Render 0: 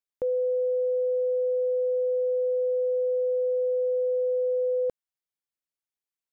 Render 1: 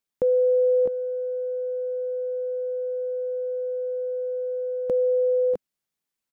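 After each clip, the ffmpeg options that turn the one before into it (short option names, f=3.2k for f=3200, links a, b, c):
-filter_complex "[0:a]equalizer=f=200:t=o:w=0.93:g=7,acontrast=35,asplit=2[a][b];[b]aecho=0:1:639|657:0.266|0.562[c];[a][c]amix=inputs=2:normalize=0"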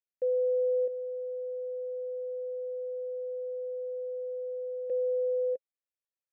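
-filter_complex "[0:a]asplit=3[a][b][c];[a]bandpass=f=530:t=q:w=8,volume=0dB[d];[b]bandpass=f=1.84k:t=q:w=8,volume=-6dB[e];[c]bandpass=f=2.48k:t=q:w=8,volume=-9dB[f];[d][e][f]amix=inputs=3:normalize=0,volume=-5.5dB"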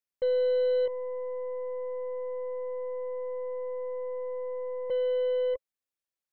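-af "aeval=exprs='0.0668*(cos(1*acos(clip(val(0)/0.0668,-1,1)))-cos(1*PI/2))+0.00237*(cos(3*acos(clip(val(0)/0.0668,-1,1)))-cos(3*PI/2))+0.00335*(cos(8*acos(clip(val(0)/0.0668,-1,1)))-cos(8*PI/2))':c=same,volume=2dB"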